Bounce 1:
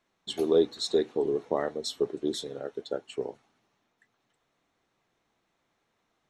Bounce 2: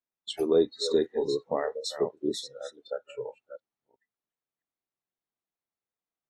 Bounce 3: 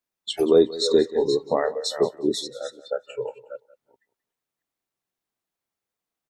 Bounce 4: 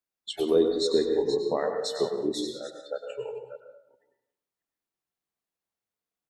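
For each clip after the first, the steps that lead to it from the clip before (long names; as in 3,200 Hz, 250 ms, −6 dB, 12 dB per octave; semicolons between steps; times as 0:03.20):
delay that plays each chunk backwards 360 ms, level −8 dB; noise reduction from a noise print of the clip's start 24 dB
repeating echo 182 ms, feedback 19%, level −18.5 dB; level +6.5 dB
convolution reverb RT60 0.75 s, pre-delay 95 ms, DRR 5 dB; level −6 dB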